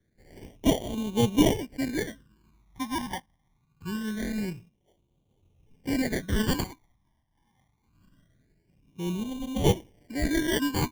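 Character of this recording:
aliases and images of a low sample rate 1,300 Hz, jitter 0%
phaser sweep stages 12, 0.24 Hz, lowest notch 440–1,700 Hz

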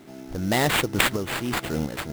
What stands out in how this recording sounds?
a quantiser's noise floor 10 bits, dither triangular
sample-and-hold tremolo 4.3 Hz
aliases and images of a low sample rate 5,800 Hz, jitter 20%

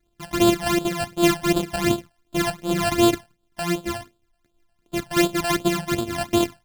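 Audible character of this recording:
a buzz of ramps at a fixed pitch in blocks of 128 samples
phaser sweep stages 12, 2.7 Hz, lowest notch 360–2,000 Hz

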